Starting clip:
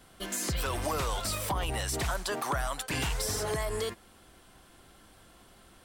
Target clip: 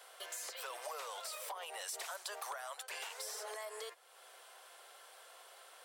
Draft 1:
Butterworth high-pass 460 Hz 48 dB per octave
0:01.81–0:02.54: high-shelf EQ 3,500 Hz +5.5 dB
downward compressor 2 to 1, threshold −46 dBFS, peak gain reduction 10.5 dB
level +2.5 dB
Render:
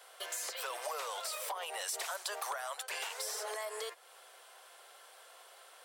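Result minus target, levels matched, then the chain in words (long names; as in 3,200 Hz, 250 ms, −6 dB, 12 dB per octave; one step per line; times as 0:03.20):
downward compressor: peak gain reduction −5 dB
Butterworth high-pass 460 Hz 48 dB per octave
0:01.81–0:02.54: high-shelf EQ 3,500 Hz +5.5 dB
downward compressor 2 to 1, threshold −56 dBFS, peak gain reduction 15.5 dB
level +2.5 dB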